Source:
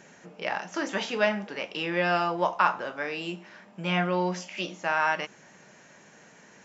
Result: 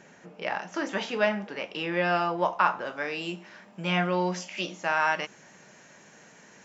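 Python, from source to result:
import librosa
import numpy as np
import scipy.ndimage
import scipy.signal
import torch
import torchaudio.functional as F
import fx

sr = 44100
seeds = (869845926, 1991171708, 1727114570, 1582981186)

y = fx.high_shelf(x, sr, hz=4400.0, db=fx.steps((0.0, -5.5), (2.85, 3.0)))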